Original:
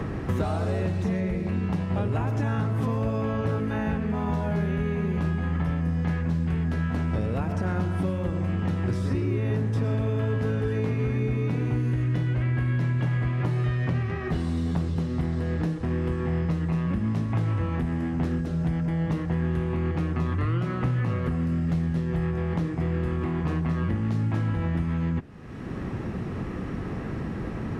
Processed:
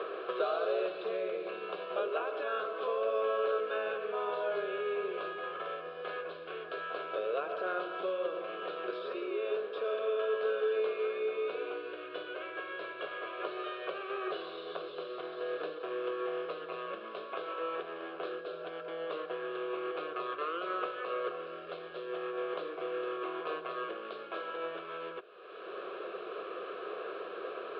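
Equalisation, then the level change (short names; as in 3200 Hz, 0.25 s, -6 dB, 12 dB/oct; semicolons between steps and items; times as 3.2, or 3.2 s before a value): elliptic band-pass 400–3900 Hz, stop band 50 dB; fixed phaser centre 1300 Hz, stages 8; +2.5 dB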